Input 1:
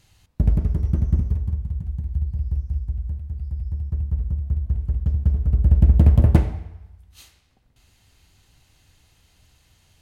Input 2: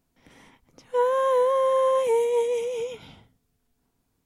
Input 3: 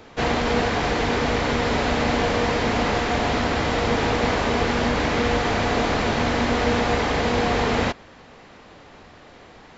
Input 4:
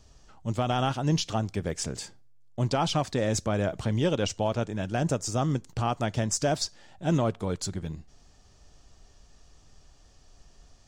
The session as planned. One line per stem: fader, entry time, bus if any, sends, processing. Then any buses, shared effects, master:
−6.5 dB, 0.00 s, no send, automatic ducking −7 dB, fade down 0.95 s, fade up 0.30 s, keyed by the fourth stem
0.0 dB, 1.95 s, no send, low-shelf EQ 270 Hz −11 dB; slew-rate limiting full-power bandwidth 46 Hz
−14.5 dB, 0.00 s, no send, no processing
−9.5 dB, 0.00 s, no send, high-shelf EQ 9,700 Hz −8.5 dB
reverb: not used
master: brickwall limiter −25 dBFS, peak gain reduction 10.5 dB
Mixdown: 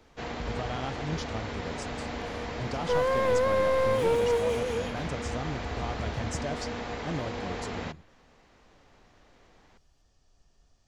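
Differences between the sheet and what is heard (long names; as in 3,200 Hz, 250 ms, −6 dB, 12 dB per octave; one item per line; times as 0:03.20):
stem 1 −6.5 dB → −16.0 dB
master: missing brickwall limiter −25 dBFS, peak gain reduction 10.5 dB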